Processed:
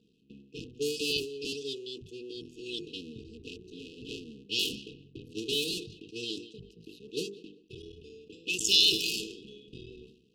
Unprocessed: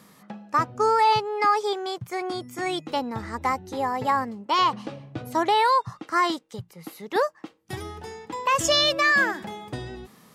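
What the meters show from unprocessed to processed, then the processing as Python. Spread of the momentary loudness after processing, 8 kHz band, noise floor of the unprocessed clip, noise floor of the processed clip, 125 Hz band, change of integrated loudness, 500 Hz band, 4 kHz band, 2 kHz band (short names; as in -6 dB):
21 LU, -1.5 dB, -56 dBFS, -63 dBFS, -10.5 dB, -6.5 dB, -11.0 dB, 0.0 dB, -13.5 dB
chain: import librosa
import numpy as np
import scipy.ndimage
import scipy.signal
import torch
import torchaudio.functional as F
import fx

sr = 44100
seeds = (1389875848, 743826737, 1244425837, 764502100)

p1 = fx.cycle_switch(x, sr, every=3, mode='muted')
p2 = fx.hum_notches(p1, sr, base_hz=50, count=9)
p3 = fx.level_steps(p2, sr, step_db=23)
p4 = p2 + (p3 * 10.0 ** (-2.5 / 20.0))
p5 = fx.brickwall_bandstop(p4, sr, low_hz=480.0, high_hz=2500.0)
p6 = fx.low_shelf(p5, sr, hz=410.0, db=-12.0)
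p7 = p6 + fx.echo_feedback(p6, sr, ms=196, feedback_pct=23, wet_db=-23.0, dry=0)
p8 = fx.env_lowpass(p7, sr, base_hz=1800.0, full_db=-24.0)
p9 = fx.sustainer(p8, sr, db_per_s=97.0)
y = p9 * 10.0 ** (-2.5 / 20.0)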